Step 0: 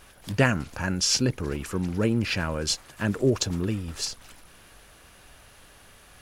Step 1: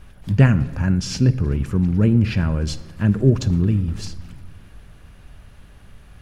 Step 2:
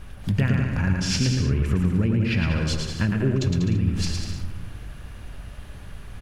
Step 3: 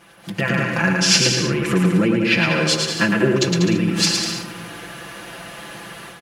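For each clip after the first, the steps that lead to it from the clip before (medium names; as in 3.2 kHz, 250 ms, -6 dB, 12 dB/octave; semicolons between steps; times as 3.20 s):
tone controls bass +15 dB, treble -7 dB; on a send at -14 dB: reverberation RT60 1.3 s, pre-delay 5 ms; on the sum: trim -1.5 dB
dynamic bell 2.3 kHz, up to +7 dB, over -47 dBFS, Q 1.1; compression 6:1, threshold -24 dBFS, peak gain reduction 15.5 dB; on a send: bouncing-ball echo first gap 110 ms, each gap 0.75×, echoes 5; on the sum: trim +3.5 dB
high-pass 310 Hz 12 dB/octave; comb 5.9 ms, depth 96%; level rider gain up to 12 dB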